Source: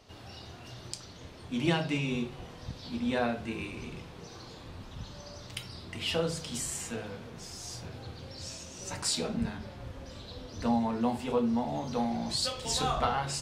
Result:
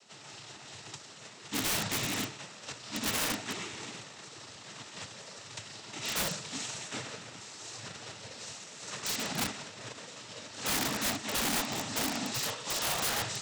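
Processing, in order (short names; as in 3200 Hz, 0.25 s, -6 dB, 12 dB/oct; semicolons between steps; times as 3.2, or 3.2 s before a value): spectral whitening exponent 0.3; noise vocoder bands 12; wrapped overs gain 25 dB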